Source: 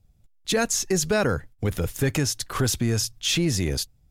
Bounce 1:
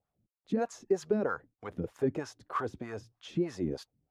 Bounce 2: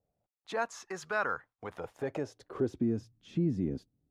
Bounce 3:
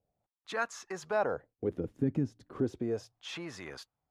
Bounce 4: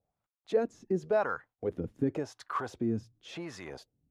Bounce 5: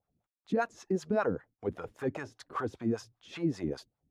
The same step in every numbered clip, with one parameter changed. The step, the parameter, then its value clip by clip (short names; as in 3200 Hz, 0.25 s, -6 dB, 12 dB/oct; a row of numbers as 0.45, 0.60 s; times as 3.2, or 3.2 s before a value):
wah, rate: 3.2, 0.22, 0.34, 0.91, 5.1 Hz